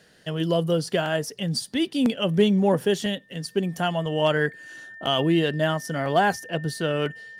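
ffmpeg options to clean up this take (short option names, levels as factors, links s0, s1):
-af "bandreject=f=1800:w=30"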